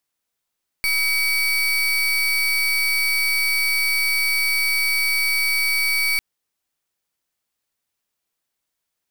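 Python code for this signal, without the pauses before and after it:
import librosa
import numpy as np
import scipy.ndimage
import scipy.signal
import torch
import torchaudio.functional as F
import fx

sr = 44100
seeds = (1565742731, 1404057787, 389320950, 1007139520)

y = fx.pulse(sr, length_s=5.35, hz=2270.0, level_db=-20.0, duty_pct=33)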